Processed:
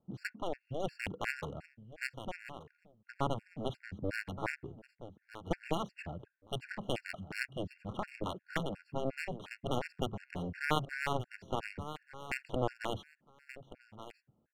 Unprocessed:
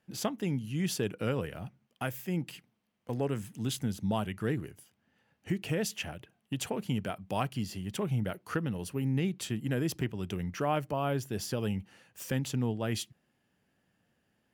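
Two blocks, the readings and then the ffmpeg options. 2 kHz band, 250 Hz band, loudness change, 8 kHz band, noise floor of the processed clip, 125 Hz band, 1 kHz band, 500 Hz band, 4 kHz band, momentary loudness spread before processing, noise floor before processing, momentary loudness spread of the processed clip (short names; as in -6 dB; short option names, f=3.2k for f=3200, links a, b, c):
+2.0 dB, -9.0 dB, -5.5 dB, -13.5 dB, -79 dBFS, -9.5 dB, -1.0 dB, -4.0 dB, -4.0 dB, 9 LU, -77 dBFS, 16 LU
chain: -filter_complex "[0:a]highshelf=f=4k:g=-8.5,asplit=2[a][b];[b]alimiter=level_in=1.5dB:limit=-24dB:level=0:latency=1:release=35,volume=-1.5dB,volume=1dB[c];[a][c]amix=inputs=2:normalize=0,aeval=exprs='0.211*(cos(1*acos(clip(val(0)/0.211,-1,1)))-cos(1*PI/2))+0.0841*(cos(3*acos(clip(val(0)/0.211,-1,1)))-cos(3*PI/2))+0.0075*(cos(7*acos(clip(val(0)/0.211,-1,1)))-cos(7*PI/2))':c=same,adynamicsmooth=sensitivity=8:basefreq=1.2k,aecho=1:1:1179|2358:0.211|0.0359,afftfilt=real='re*gt(sin(2*PI*2.8*pts/sr)*(1-2*mod(floor(b*sr/1024/1400),2)),0)':imag='im*gt(sin(2*PI*2.8*pts/sr)*(1-2*mod(floor(b*sr/1024/1400),2)),0)':win_size=1024:overlap=0.75,volume=3dB"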